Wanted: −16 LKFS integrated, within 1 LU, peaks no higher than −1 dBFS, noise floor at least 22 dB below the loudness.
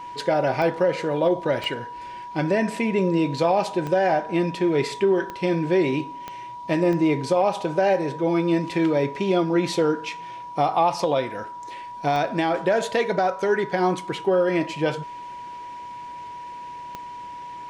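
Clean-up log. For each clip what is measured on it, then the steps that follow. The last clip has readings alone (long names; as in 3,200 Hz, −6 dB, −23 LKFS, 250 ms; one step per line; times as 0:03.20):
number of clicks 8; interfering tone 970 Hz; level of the tone −34 dBFS; integrated loudness −23.0 LKFS; sample peak −8.5 dBFS; target loudness −16.0 LKFS
→ click removal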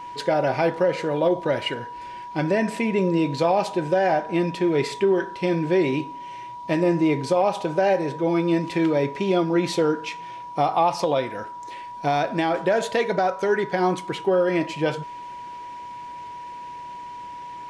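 number of clicks 0; interfering tone 970 Hz; level of the tone −34 dBFS
→ notch filter 970 Hz, Q 30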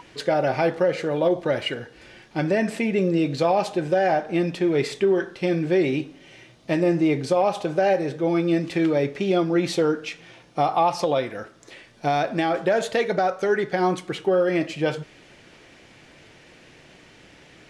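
interfering tone none found; integrated loudness −23.0 LKFS; sample peak −9.0 dBFS; target loudness −16.0 LKFS
→ level +7 dB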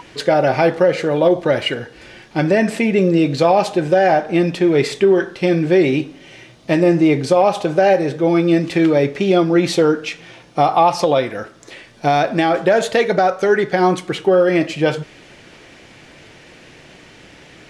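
integrated loudness −16.0 LKFS; sample peak −2.0 dBFS; background noise floor −44 dBFS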